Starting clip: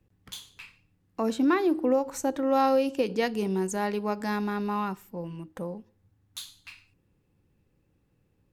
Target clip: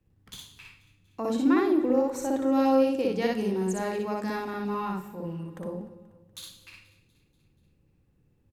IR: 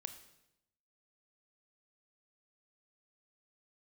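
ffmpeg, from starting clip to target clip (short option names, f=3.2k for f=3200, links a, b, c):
-filter_complex "[0:a]aecho=1:1:241|482|723|964|1205:0.0841|0.0496|0.0293|0.0173|0.0102,asplit=2[a][b];[1:a]atrim=start_sample=2205,lowshelf=f=410:g=9,adelay=60[c];[b][c]afir=irnorm=-1:irlink=0,volume=2dB[d];[a][d]amix=inputs=2:normalize=0,volume=-4.5dB"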